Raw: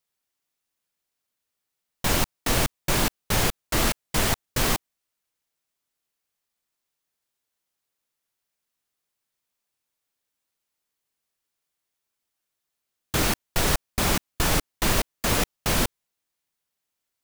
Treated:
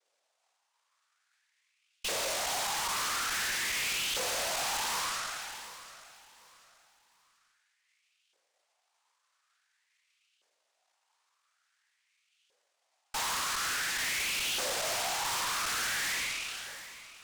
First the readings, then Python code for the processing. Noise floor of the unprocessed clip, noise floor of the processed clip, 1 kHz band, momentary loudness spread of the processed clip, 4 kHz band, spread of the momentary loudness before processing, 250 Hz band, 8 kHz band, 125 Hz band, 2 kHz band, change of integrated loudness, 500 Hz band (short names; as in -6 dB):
-83 dBFS, -78 dBFS, -4.5 dB, 10 LU, -2.5 dB, 1 LU, -21.5 dB, -3.5 dB, -25.0 dB, -2.5 dB, -6.0 dB, -10.0 dB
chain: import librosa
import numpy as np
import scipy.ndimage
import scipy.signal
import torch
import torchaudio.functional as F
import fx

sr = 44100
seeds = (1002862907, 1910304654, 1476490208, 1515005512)

p1 = fx.spec_trails(x, sr, decay_s=1.08)
p2 = scipy.signal.sosfilt(scipy.signal.butter(2, 3800.0, 'lowpass', fs=sr, output='sos'), p1)
p3 = fx.peak_eq(p2, sr, hz=210.0, db=8.0, octaves=1.1)
p4 = fx.over_compress(p3, sr, threshold_db=-30.0, ratio=-1.0)
p5 = p3 + (p4 * librosa.db_to_amplitude(1.5))
p6 = fx.sample_hold(p5, sr, seeds[0], rate_hz=1800.0, jitter_pct=0)
p7 = fx.noise_vocoder(p6, sr, seeds[1], bands=1)
p8 = fx.filter_lfo_highpass(p7, sr, shape='saw_up', hz=0.48, low_hz=480.0, high_hz=3000.0, q=4.3)
p9 = fx.tube_stage(p8, sr, drive_db=27.0, bias=0.35)
p10 = p9 + fx.echo_feedback(p9, sr, ms=739, feedback_pct=30, wet_db=-15.5, dry=0)
p11 = fx.sustainer(p10, sr, db_per_s=21.0)
y = p11 * librosa.db_to_amplitude(-4.5)